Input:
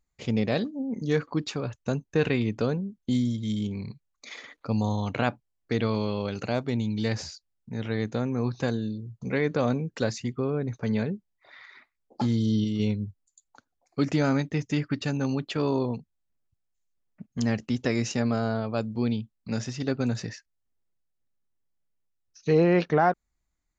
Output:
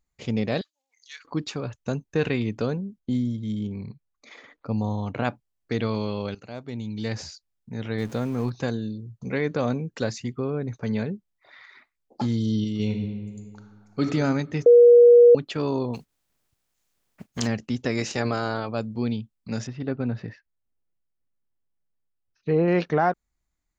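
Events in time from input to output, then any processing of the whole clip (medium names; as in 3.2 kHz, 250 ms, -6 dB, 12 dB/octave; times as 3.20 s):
0.61–1.25 s: Bessel high-pass 2.8 kHz, order 4
2.99–5.25 s: treble shelf 2.4 kHz -11 dB
6.35–7.30 s: fade in, from -16.5 dB
7.98–8.50 s: jump at every zero crossing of -39.5 dBFS
12.82–14.04 s: reverb throw, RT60 1.8 s, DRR 3.5 dB
14.66–15.35 s: bleep 479 Hz -8.5 dBFS
15.93–17.46 s: spectral contrast reduction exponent 0.62
17.97–18.68 s: spectral peaks clipped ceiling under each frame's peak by 13 dB
19.67–22.68 s: distance through air 390 m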